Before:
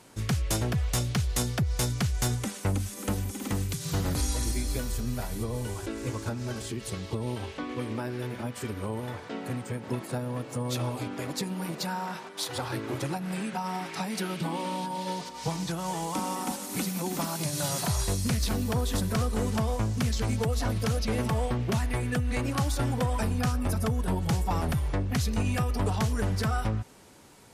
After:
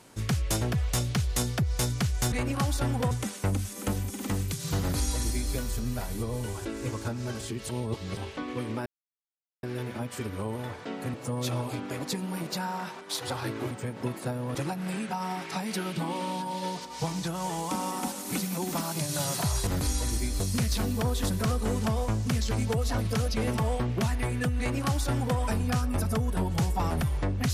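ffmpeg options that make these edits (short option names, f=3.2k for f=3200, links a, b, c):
-filter_complex "[0:a]asplit=11[a][b][c][d][e][f][g][h][i][j][k];[a]atrim=end=2.322[l];[b]atrim=start=22.298:end=23.092[m];[c]atrim=start=2.318:end=6.902[n];[d]atrim=start=6.898:end=7.382,asetpts=PTS-STARTPTS,areverse[o];[e]atrim=start=7.378:end=8.07,asetpts=PTS-STARTPTS,afade=t=out:st=0.688:d=0.004:c=hsin,apad=pad_dur=0.77[p];[f]atrim=start=8.07:end=9.582,asetpts=PTS-STARTPTS,afade=t=in:d=0.004:c=hsin[q];[g]atrim=start=10.418:end=12.992[r];[h]atrim=start=9.578:end=10.422[s];[i]atrim=start=12.988:end=18.112[t];[j]atrim=start=4.008:end=4.742[u];[k]atrim=start=18.108[v];[l][m]acrossfade=d=0.004:c1=hsin:c2=hsin[w];[w][n]acrossfade=d=0.004:c1=hsin:c2=hsin[x];[x][o]acrossfade=d=0.004:c1=hsin:c2=hsin[y];[p][q]concat=n=2:v=0:a=1[z];[y][z]acrossfade=d=0.004:c1=hsin:c2=hsin[aa];[aa][r]acrossfade=d=0.004:c1=hsin:c2=hsin[ab];[ab][s]acrossfade=d=0.004:c1=hsin:c2=hsin[ac];[ac][t]acrossfade=d=0.004:c1=hsin:c2=hsin[ad];[ad][u]acrossfade=d=0.004:c1=hsin:c2=hsin[ae];[ae][v]acrossfade=d=0.004:c1=hsin:c2=hsin"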